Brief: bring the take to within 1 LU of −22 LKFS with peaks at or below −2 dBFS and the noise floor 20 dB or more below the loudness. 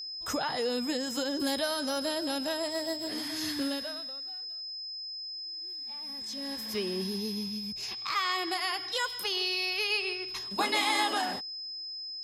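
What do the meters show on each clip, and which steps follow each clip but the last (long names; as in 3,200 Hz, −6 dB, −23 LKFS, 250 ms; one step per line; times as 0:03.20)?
interfering tone 5,100 Hz; level of the tone −37 dBFS; integrated loudness −31.5 LKFS; sample peak −16.0 dBFS; target loudness −22.0 LKFS
→ notch filter 5,100 Hz, Q 30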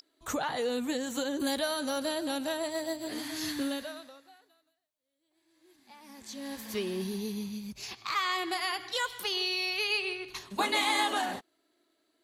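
interfering tone none found; integrated loudness −32.0 LKFS; sample peak −16.0 dBFS; target loudness −22.0 LKFS
→ level +10 dB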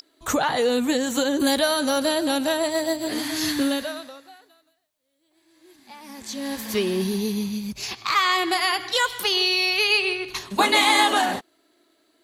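integrated loudness −22.0 LKFS; sample peak −6.0 dBFS; background noise floor −68 dBFS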